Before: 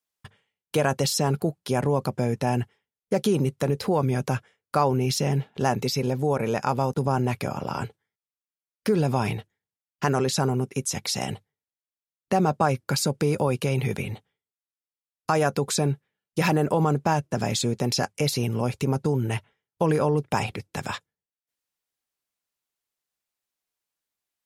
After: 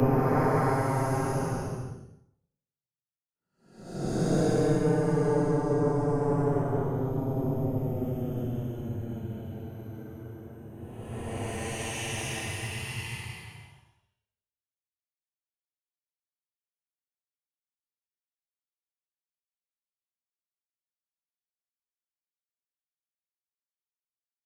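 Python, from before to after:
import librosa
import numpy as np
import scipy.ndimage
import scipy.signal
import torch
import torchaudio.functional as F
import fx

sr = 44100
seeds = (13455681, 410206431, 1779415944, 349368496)

y = fx.power_curve(x, sr, exponent=2.0)
y = fx.paulstretch(y, sr, seeds[0], factor=29.0, window_s=0.05, from_s=18.91)
y = fx.band_widen(y, sr, depth_pct=40)
y = y * 10.0 ** (6.0 / 20.0)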